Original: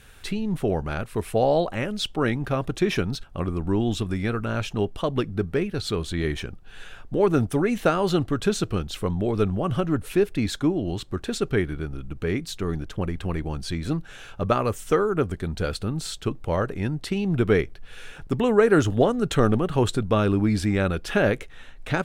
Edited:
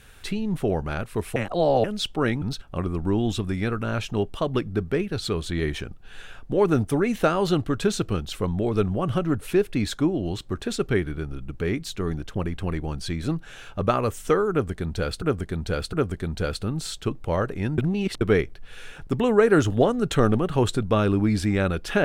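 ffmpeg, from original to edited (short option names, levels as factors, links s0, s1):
-filter_complex "[0:a]asplit=8[s0][s1][s2][s3][s4][s5][s6][s7];[s0]atrim=end=1.362[s8];[s1]atrim=start=1.358:end=1.842,asetpts=PTS-STARTPTS,areverse[s9];[s2]atrim=start=1.838:end=2.422[s10];[s3]atrim=start=3.038:end=15.842[s11];[s4]atrim=start=15.128:end=15.842[s12];[s5]atrim=start=15.128:end=16.982[s13];[s6]atrim=start=16.978:end=17.412,asetpts=PTS-STARTPTS,areverse[s14];[s7]atrim=start=17.408[s15];[s8][s9]acrossfade=d=0.004:c1=hsin:c2=hsin[s16];[s16][s10]acrossfade=d=0.004:c1=hsin:c2=hsin[s17];[s17][s11]acrossfade=d=0.004:c1=hsin:c2=hsin[s18];[s18][s12]acrossfade=d=0.004:c1=hsin:c2=hsin[s19];[s19][s13]acrossfade=d=0.004:c1=hsin:c2=hsin[s20];[s20][s14]acrossfade=d=0.004:c1=hsin:c2=hsin[s21];[s21][s15]acrossfade=d=0.004:c1=hsin:c2=hsin"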